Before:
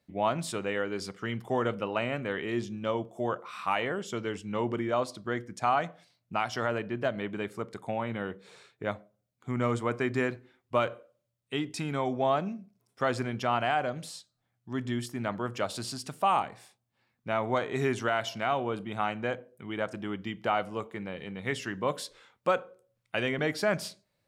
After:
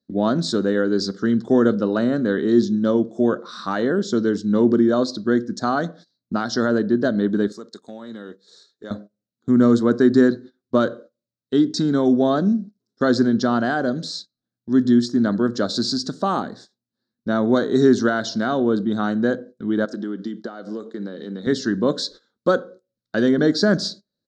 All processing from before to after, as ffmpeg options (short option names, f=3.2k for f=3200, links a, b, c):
-filter_complex "[0:a]asettb=1/sr,asplit=3[a][b][c];[a]atrim=end=7.524[d];[b]atrim=start=7.52:end=8.91,asetpts=PTS-STARTPTS,afade=t=in:d=0.004:c=qsin,afade=t=out:st=1.386:d=0.004:c=qsin,aemphasis=mode=production:type=riaa,bandreject=f=1.5k:w=12,acompressor=threshold=-50dB:ratio=2:attack=3.2:release=140:knee=1:detection=peak[e];[c]atrim=start=8.906[f];[d][e]acrossfade=d=0.004:c1=hsin:c2=qsin[g];[g][f]acrossfade=d=0.004:c1=qsin:c2=hsin,asettb=1/sr,asplit=3[h][i][j];[h]atrim=end=19.854[k];[i]atrim=start=19.85:end=21.47,asetpts=PTS-STARTPTS,afade=t=in:d=0.004:c=qsin,afade=t=out:st=1.616:d=0.004:c=qsin,highpass=250,acompressor=threshold=-39dB:ratio=4:attack=3.2:release=140:knee=1:detection=peak,equalizer=f=990:w=3.6:g=-3[l];[j]atrim=start=21.466[m];[k][l]acrossfade=d=0.004:c1=hsin:c2=qsin[n];[n][m]acrossfade=d=0.004:c1=qsin:c2=hsin,agate=range=-17dB:threshold=-50dB:ratio=16:detection=peak,firequalizer=gain_entry='entry(130,0);entry(220,14);entry(850,-7);entry(1600,4);entry(2400,-25);entry(3900,12);entry(6800,3);entry(11000,-27)':delay=0.05:min_phase=1,volume=5.5dB"